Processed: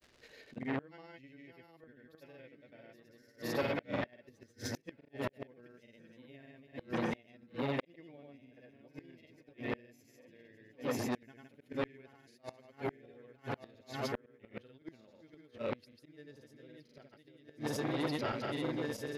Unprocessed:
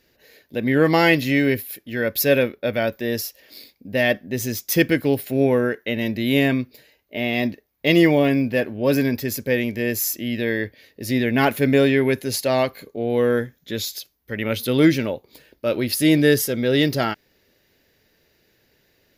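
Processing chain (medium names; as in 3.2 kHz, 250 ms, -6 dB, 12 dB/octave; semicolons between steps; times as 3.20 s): backward echo that repeats 656 ms, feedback 67%, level -7.5 dB; slow attack 222 ms; crackle 170 per s -42 dBFS; granulator 100 ms, grains 20 per s, pitch spread up and down by 0 st; inverted gate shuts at -16 dBFS, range -33 dB; distance through air 60 m; transformer saturation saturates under 1.2 kHz; trim -3 dB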